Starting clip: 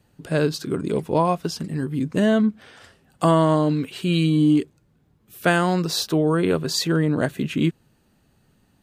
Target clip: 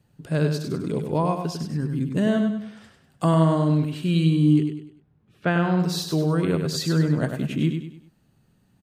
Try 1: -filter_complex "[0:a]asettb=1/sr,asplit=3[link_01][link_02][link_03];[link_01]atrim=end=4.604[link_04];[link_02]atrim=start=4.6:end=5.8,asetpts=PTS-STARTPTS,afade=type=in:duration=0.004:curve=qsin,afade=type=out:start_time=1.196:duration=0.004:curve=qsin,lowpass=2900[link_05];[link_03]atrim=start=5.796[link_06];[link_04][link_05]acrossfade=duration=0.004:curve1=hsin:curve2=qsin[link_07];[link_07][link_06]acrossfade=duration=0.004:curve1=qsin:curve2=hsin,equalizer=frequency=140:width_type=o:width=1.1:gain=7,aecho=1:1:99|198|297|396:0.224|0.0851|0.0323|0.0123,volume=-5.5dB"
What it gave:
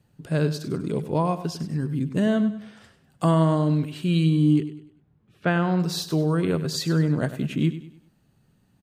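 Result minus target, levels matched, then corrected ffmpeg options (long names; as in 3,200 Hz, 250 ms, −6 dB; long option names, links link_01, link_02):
echo-to-direct −6.5 dB
-filter_complex "[0:a]asettb=1/sr,asplit=3[link_01][link_02][link_03];[link_01]atrim=end=4.604[link_04];[link_02]atrim=start=4.6:end=5.8,asetpts=PTS-STARTPTS,afade=type=in:duration=0.004:curve=qsin,afade=type=out:start_time=1.196:duration=0.004:curve=qsin,lowpass=2900[link_05];[link_03]atrim=start=5.796[link_06];[link_04][link_05]acrossfade=duration=0.004:curve1=hsin:curve2=qsin[link_07];[link_07][link_06]acrossfade=duration=0.004:curve1=qsin:curve2=hsin,equalizer=frequency=140:width_type=o:width=1.1:gain=7,aecho=1:1:99|198|297|396:0.473|0.18|0.0683|0.026,volume=-5.5dB"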